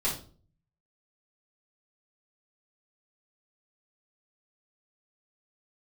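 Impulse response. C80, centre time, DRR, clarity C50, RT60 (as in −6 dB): 12.5 dB, 27 ms, −8.0 dB, 6.5 dB, 0.45 s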